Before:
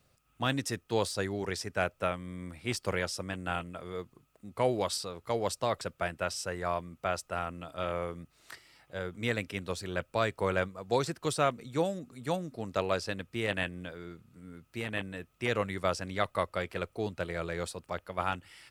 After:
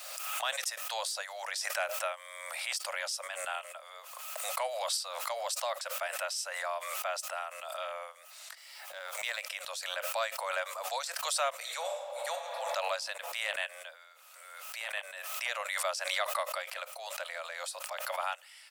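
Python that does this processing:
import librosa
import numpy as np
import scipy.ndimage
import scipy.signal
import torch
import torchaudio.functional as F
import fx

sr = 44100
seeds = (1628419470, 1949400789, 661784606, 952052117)

y = fx.law_mismatch(x, sr, coded='A', at=(8.53, 9.42))
y = fx.reverb_throw(y, sr, start_s=11.56, length_s=0.77, rt60_s=1.8, drr_db=0.5)
y = scipy.signal.sosfilt(scipy.signal.butter(16, 550.0, 'highpass', fs=sr, output='sos'), y)
y = fx.high_shelf(y, sr, hz=3100.0, db=7.5)
y = fx.pre_swell(y, sr, db_per_s=31.0)
y = y * librosa.db_to_amplitude(-4.0)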